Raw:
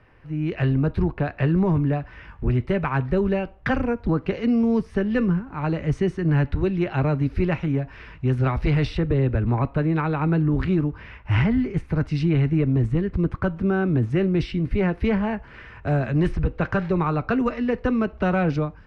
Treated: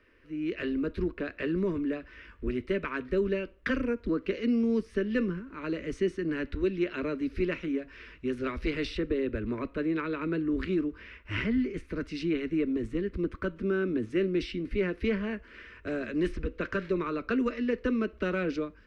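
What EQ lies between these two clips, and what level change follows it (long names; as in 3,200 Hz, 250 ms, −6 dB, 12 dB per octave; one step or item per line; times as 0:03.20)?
low-shelf EQ 160 Hz −7.5 dB
phaser with its sweep stopped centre 330 Hz, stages 4
−2.0 dB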